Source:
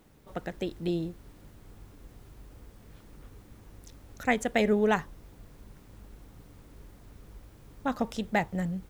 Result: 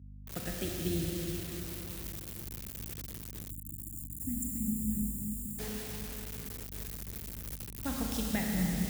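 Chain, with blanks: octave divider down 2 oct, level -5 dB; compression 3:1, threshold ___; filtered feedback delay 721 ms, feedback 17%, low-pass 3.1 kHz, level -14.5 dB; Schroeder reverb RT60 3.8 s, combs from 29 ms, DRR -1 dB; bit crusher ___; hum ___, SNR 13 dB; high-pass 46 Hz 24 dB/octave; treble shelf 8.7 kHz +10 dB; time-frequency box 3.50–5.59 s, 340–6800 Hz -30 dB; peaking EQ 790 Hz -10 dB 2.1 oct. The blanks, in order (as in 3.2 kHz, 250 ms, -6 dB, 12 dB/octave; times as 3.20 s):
-29 dBFS, 7-bit, 50 Hz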